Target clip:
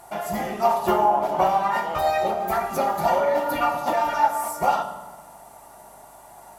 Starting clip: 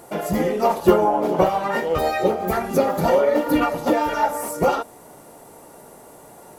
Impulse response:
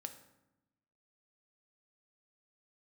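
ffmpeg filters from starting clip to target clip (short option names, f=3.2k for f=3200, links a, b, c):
-filter_complex "[0:a]aeval=exprs='val(0)+0.002*(sin(2*PI*50*n/s)+sin(2*PI*2*50*n/s)/2+sin(2*PI*3*50*n/s)/3+sin(2*PI*4*50*n/s)/4+sin(2*PI*5*50*n/s)/5)':c=same,lowshelf=f=590:t=q:w=3:g=-6.5[a];[1:a]atrim=start_sample=2205,asetrate=32193,aresample=44100[b];[a][b]afir=irnorm=-1:irlink=0"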